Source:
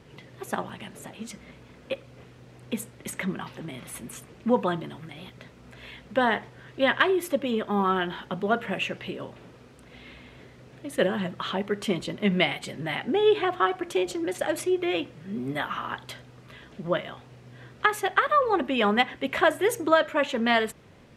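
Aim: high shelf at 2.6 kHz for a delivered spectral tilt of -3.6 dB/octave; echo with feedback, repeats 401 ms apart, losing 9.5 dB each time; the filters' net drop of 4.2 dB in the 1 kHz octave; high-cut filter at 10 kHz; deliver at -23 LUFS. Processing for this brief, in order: low-pass 10 kHz; peaking EQ 1 kHz -5 dB; treble shelf 2.6 kHz -4 dB; feedback delay 401 ms, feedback 33%, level -9.5 dB; trim +5 dB

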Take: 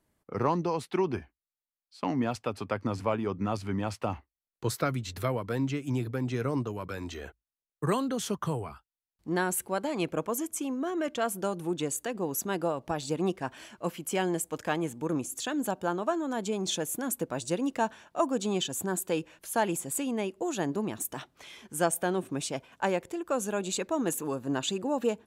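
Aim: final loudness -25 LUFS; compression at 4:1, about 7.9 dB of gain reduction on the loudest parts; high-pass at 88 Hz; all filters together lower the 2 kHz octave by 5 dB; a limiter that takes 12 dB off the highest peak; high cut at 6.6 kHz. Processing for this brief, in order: high-pass 88 Hz; low-pass 6.6 kHz; peaking EQ 2 kHz -7 dB; compression 4:1, threshold -32 dBFS; trim +17 dB; peak limiter -15.5 dBFS

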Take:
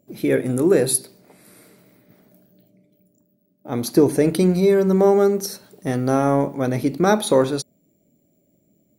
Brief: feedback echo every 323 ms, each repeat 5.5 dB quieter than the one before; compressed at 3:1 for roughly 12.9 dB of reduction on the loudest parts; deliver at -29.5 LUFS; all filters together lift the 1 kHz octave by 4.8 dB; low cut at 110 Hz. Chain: high-pass 110 Hz; peaking EQ 1 kHz +6.5 dB; compression 3:1, threshold -27 dBFS; feedback delay 323 ms, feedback 53%, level -5.5 dB; trim -1.5 dB

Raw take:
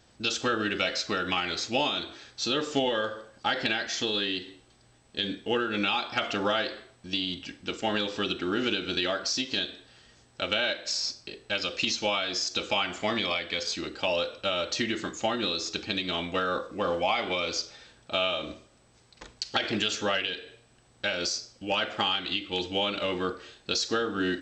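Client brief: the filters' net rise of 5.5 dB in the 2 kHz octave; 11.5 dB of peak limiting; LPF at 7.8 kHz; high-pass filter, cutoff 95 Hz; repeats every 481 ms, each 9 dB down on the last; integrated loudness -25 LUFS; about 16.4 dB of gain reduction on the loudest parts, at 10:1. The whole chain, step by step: high-pass 95 Hz; low-pass 7.8 kHz; peaking EQ 2 kHz +7.5 dB; compression 10:1, threshold -37 dBFS; peak limiter -30 dBFS; feedback delay 481 ms, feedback 35%, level -9 dB; trim +16 dB

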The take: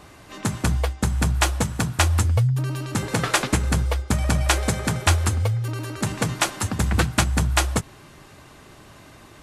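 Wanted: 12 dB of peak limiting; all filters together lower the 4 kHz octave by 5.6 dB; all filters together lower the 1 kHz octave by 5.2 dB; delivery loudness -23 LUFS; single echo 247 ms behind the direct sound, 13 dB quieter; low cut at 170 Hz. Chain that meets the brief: high-pass 170 Hz; peaking EQ 1 kHz -6.5 dB; peaking EQ 4 kHz -7 dB; peak limiter -17.5 dBFS; delay 247 ms -13 dB; trim +8 dB

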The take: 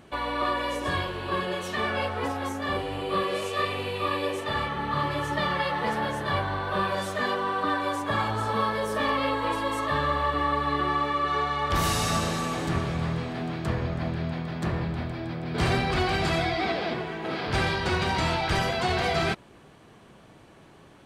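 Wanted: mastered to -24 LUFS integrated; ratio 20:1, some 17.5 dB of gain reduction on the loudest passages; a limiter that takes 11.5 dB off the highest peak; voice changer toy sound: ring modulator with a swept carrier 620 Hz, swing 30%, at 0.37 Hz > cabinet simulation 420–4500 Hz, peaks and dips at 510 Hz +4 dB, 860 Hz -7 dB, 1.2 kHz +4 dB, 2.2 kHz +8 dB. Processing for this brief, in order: compression 20:1, threshold -39 dBFS; peak limiter -39 dBFS; ring modulator with a swept carrier 620 Hz, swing 30%, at 0.37 Hz; cabinet simulation 420–4500 Hz, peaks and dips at 510 Hz +4 dB, 860 Hz -7 dB, 1.2 kHz +4 dB, 2.2 kHz +8 dB; trim +25 dB

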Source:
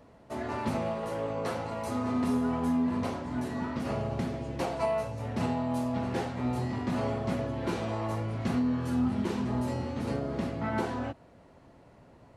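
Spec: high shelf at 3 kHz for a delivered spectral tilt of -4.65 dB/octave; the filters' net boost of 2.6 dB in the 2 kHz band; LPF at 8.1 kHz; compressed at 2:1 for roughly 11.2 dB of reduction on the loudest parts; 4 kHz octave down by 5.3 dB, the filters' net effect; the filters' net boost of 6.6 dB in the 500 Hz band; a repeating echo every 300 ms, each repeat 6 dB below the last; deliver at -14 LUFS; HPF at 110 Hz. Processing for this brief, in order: high-pass 110 Hz; low-pass 8.1 kHz; peaking EQ 500 Hz +8.5 dB; peaking EQ 2 kHz +5.5 dB; treble shelf 3 kHz -4.5 dB; peaking EQ 4 kHz -6 dB; compression 2:1, threshold -43 dBFS; feedback delay 300 ms, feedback 50%, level -6 dB; trim +24 dB

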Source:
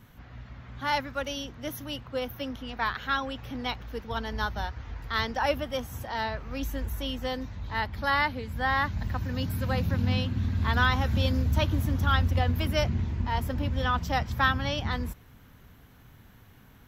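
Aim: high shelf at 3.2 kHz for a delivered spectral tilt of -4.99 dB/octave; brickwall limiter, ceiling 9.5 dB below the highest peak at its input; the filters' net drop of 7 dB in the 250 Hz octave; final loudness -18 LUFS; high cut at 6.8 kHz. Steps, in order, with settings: low-pass 6.8 kHz; peaking EQ 250 Hz -8.5 dB; treble shelf 3.2 kHz +5.5 dB; trim +13 dB; peak limiter -5 dBFS

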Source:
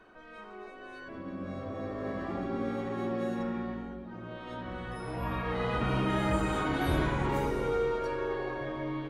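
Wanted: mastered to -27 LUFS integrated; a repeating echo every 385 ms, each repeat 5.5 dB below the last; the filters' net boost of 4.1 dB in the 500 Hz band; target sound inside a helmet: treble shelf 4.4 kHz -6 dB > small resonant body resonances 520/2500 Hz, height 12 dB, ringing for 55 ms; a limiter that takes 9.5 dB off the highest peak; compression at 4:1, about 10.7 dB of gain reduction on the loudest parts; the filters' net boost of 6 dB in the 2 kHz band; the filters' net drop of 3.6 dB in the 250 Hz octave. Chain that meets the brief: peaking EQ 250 Hz -7.5 dB; peaking EQ 500 Hz +6.5 dB; peaking EQ 2 kHz +8.5 dB; compression 4:1, threshold -35 dBFS; peak limiter -34 dBFS; treble shelf 4.4 kHz -6 dB; feedback delay 385 ms, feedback 53%, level -5.5 dB; small resonant body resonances 520/2500 Hz, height 12 dB, ringing for 55 ms; trim +10.5 dB

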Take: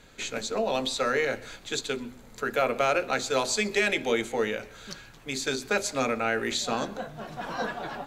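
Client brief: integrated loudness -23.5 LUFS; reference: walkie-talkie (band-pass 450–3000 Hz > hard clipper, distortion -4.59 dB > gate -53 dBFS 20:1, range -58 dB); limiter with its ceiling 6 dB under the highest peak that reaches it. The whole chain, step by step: peak limiter -18 dBFS; band-pass 450–3000 Hz; hard clipper -35.5 dBFS; gate -53 dBFS 20:1, range -58 dB; trim +15 dB

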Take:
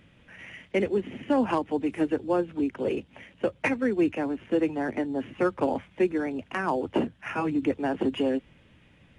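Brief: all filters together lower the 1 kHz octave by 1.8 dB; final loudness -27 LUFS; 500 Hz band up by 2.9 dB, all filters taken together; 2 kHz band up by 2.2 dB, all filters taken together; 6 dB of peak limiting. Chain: peaking EQ 500 Hz +4.5 dB; peaking EQ 1 kHz -5 dB; peaking EQ 2 kHz +4 dB; trim +2 dB; peak limiter -16 dBFS

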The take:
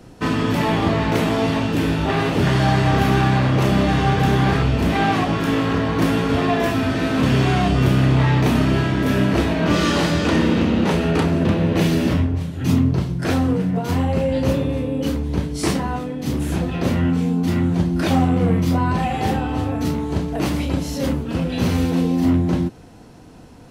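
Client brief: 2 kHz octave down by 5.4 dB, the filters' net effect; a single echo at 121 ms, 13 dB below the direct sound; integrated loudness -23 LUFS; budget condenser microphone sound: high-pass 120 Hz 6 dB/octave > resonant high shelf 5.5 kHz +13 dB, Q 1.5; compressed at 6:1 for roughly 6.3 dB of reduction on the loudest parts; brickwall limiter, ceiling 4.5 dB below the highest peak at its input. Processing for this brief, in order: peaking EQ 2 kHz -5.5 dB; compression 6:1, threshold -19 dBFS; peak limiter -15.5 dBFS; high-pass 120 Hz 6 dB/octave; resonant high shelf 5.5 kHz +13 dB, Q 1.5; delay 121 ms -13 dB; trim +2 dB

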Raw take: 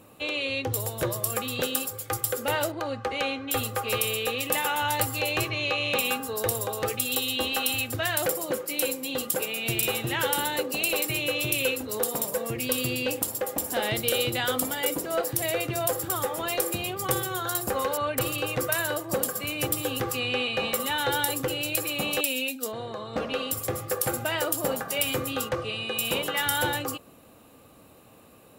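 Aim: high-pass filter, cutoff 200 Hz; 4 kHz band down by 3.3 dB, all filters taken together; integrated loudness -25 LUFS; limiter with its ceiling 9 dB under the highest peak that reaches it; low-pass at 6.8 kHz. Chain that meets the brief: high-pass 200 Hz; low-pass 6.8 kHz; peaking EQ 4 kHz -4.5 dB; trim +8 dB; peak limiter -16.5 dBFS

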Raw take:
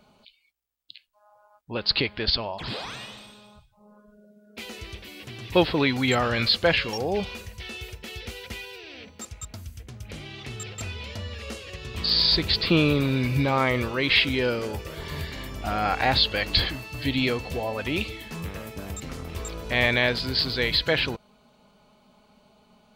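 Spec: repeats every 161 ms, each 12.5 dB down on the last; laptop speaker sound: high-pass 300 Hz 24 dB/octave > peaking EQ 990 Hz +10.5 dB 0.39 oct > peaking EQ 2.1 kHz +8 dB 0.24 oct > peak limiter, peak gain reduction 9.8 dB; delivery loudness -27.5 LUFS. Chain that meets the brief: high-pass 300 Hz 24 dB/octave; peaking EQ 990 Hz +10.5 dB 0.39 oct; peaking EQ 2.1 kHz +8 dB 0.24 oct; feedback delay 161 ms, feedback 24%, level -12.5 dB; trim -0.5 dB; peak limiter -15.5 dBFS

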